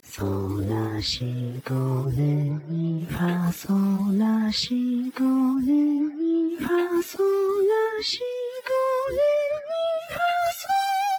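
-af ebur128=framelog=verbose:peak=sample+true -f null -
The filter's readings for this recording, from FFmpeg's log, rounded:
Integrated loudness:
  I:         -24.4 LUFS
  Threshold: -34.4 LUFS
Loudness range:
  LRA:         2.9 LU
  Threshold: -44.1 LUFS
  LRA low:   -26.0 LUFS
  LRA high:  -23.1 LUFS
Sample peak:
  Peak:      -13.6 dBFS
True peak:
  Peak:      -13.6 dBFS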